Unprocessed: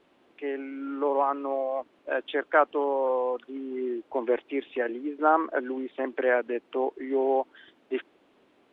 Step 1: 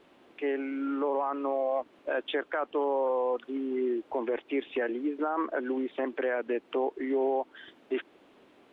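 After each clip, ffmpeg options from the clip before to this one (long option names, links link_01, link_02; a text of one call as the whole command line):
ffmpeg -i in.wav -filter_complex "[0:a]asplit=2[link_01][link_02];[link_02]acompressor=threshold=-34dB:ratio=6,volume=0dB[link_03];[link_01][link_03]amix=inputs=2:normalize=0,alimiter=limit=-19dB:level=0:latency=1:release=22,volume=-2dB" out.wav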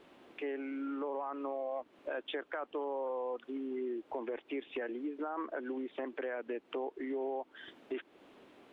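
ffmpeg -i in.wav -af "acompressor=threshold=-42dB:ratio=2" out.wav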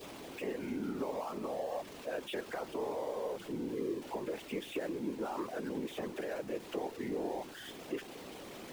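ffmpeg -i in.wav -af "aeval=exprs='val(0)+0.5*0.00841*sgn(val(0))':channel_layout=same,adynamicequalizer=threshold=0.00178:dfrequency=1400:dqfactor=1.6:tfrequency=1400:tqfactor=1.6:attack=5:release=100:ratio=0.375:range=2.5:mode=cutabove:tftype=bell,afftfilt=real='hypot(re,im)*cos(2*PI*random(0))':imag='hypot(re,im)*sin(2*PI*random(1))':win_size=512:overlap=0.75,volume=4.5dB" out.wav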